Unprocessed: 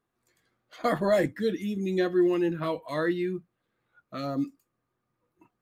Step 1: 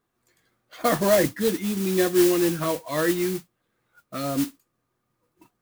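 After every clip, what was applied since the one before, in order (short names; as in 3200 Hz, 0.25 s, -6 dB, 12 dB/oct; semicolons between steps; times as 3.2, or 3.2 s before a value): modulation noise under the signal 11 dB; gain +4 dB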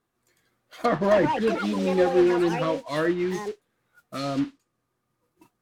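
dynamic EQ 4200 Hz, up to +5 dB, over -41 dBFS, Q 0.7; treble ducked by the level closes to 1700 Hz, closed at -19 dBFS; echoes that change speed 0.549 s, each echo +7 st, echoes 2, each echo -6 dB; gain -1 dB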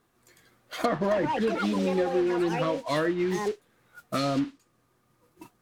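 compressor 5:1, threshold -33 dBFS, peak gain reduction 16 dB; gain +8.5 dB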